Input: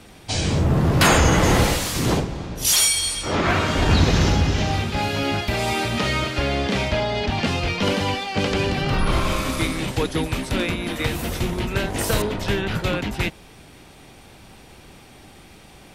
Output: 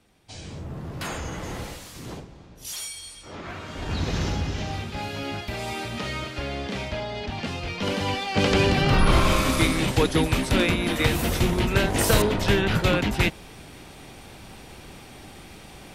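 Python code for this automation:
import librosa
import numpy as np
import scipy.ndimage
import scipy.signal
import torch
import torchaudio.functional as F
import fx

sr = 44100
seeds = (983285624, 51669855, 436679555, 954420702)

y = fx.gain(x, sr, db=fx.line((3.6, -17.0), (4.15, -8.5), (7.64, -8.5), (8.53, 2.0)))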